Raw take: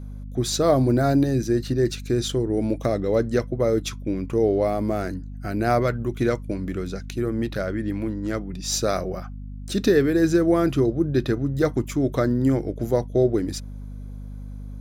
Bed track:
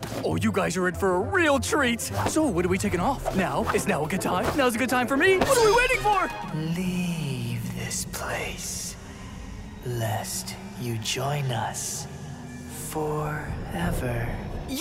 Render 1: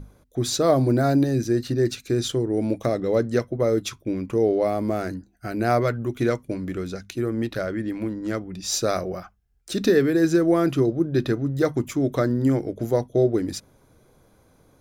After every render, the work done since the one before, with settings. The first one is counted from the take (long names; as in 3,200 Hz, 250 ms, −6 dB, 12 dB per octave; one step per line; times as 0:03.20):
mains-hum notches 50/100/150/200/250 Hz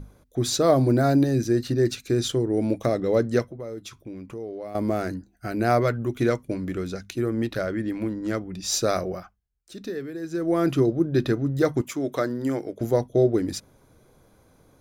0:03.47–0:04.75: downward compressor 2 to 1, threshold −43 dBFS
0:09.08–0:10.70: duck −14 dB, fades 0.41 s
0:11.81–0:12.81: high-pass filter 430 Hz 6 dB per octave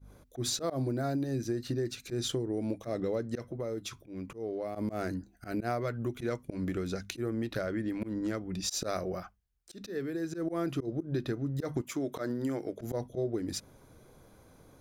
volume swells 132 ms
downward compressor 6 to 1, threshold −30 dBFS, peak gain reduction 14 dB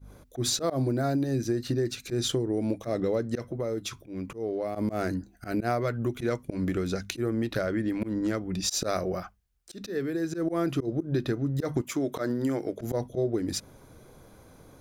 level +5 dB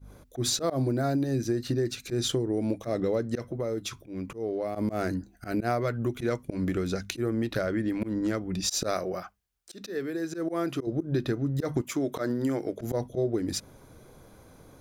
0:08.94–0:10.87: low-shelf EQ 160 Hz −11.5 dB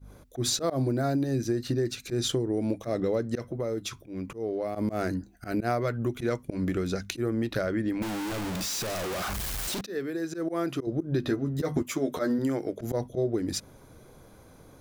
0:08.02–0:09.81: sign of each sample alone
0:11.22–0:12.39: double-tracking delay 12 ms −3 dB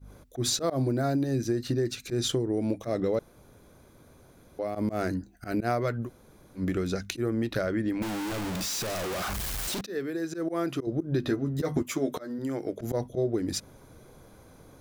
0:03.19–0:04.59: fill with room tone
0:06.05–0:06.59: fill with room tone, crossfade 0.10 s
0:12.18–0:12.72: fade in, from −17.5 dB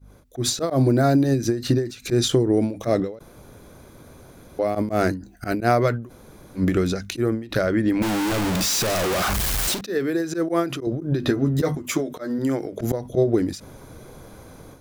automatic gain control gain up to 9.5 dB
every ending faded ahead of time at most 130 dB per second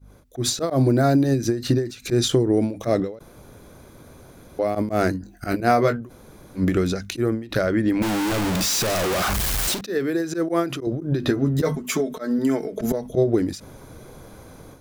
0:05.12–0:06.01: double-tracking delay 21 ms −6.5 dB
0:11.65–0:13.12: comb filter 4.6 ms, depth 69%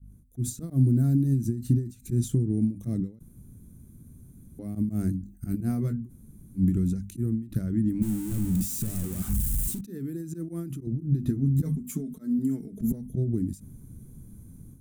drawn EQ curve 220 Hz 0 dB, 570 Hz −29 dB, 5,000 Hz −24 dB, 8,400 Hz −5 dB